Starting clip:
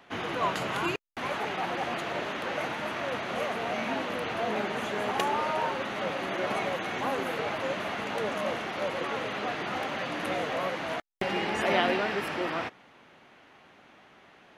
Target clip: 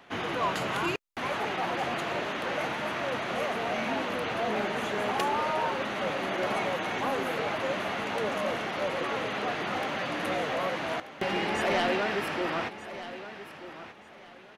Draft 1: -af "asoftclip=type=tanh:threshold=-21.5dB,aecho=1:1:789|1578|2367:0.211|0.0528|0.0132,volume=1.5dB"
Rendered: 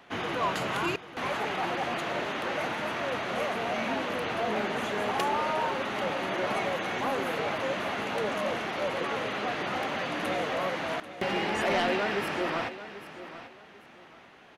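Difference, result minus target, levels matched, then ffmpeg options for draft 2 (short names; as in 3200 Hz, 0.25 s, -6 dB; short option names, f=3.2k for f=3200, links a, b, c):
echo 0.444 s early
-af "asoftclip=type=tanh:threshold=-21.5dB,aecho=1:1:1233|2466|3699:0.211|0.0528|0.0132,volume=1.5dB"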